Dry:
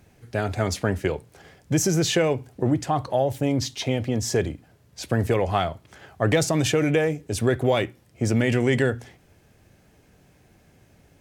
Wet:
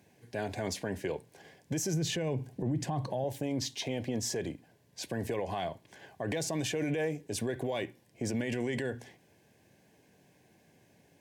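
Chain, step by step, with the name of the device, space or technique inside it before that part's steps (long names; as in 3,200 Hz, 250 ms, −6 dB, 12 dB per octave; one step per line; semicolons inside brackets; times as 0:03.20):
0:01.93–0:03.24: parametric band 140 Hz +11 dB 1.8 octaves
PA system with an anti-feedback notch (high-pass filter 150 Hz 12 dB per octave; Butterworth band-reject 1,300 Hz, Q 4.3; brickwall limiter −19.5 dBFS, peak gain reduction 13.5 dB)
level −5 dB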